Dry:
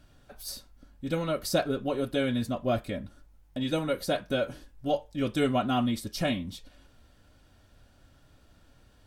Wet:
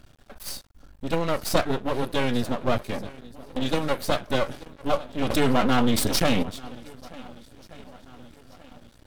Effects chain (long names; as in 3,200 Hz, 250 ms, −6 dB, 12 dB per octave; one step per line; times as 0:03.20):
feedback echo with a long and a short gap by turns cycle 1,479 ms, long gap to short 1.5 to 1, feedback 42%, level −19.5 dB
half-wave rectification
0:05.30–0:06.43: envelope flattener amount 70%
level +8 dB